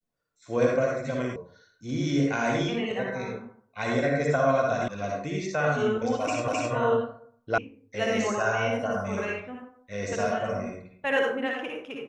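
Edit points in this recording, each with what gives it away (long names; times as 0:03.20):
0:01.36: cut off before it has died away
0:04.88: cut off before it has died away
0:06.48: the same again, the last 0.26 s
0:07.58: cut off before it has died away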